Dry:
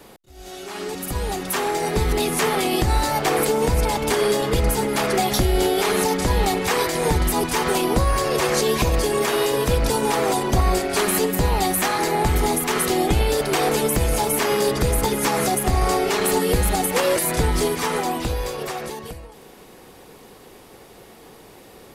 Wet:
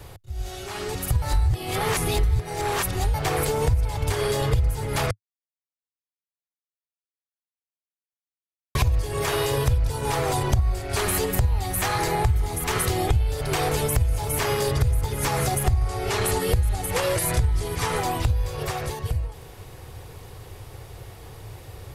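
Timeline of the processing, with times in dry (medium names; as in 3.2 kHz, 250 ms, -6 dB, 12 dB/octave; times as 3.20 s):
1.22–3.14 s: reverse
5.11–8.75 s: mute
15.79–17.96 s: brick-wall FIR low-pass 13 kHz
whole clip: resonant low shelf 150 Hz +12.5 dB, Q 3; compression 5:1, threshold -20 dBFS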